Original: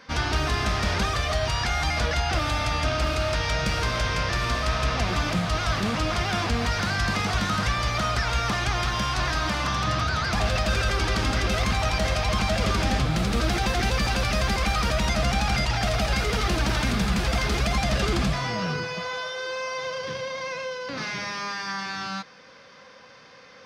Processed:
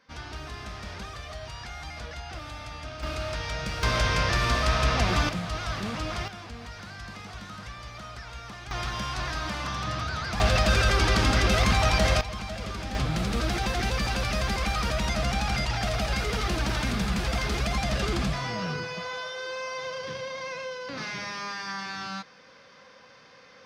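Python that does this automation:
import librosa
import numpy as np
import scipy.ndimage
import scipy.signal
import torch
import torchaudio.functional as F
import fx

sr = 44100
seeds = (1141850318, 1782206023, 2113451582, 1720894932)

y = fx.gain(x, sr, db=fx.steps((0.0, -14.0), (3.03, -7.0), (3.83, 1.0), (5.29, -6.5), (6.28, -16.0), (8.71, -6.0), (10.4, 2.0), (12.21, -11.0), (12.95, -3.5)))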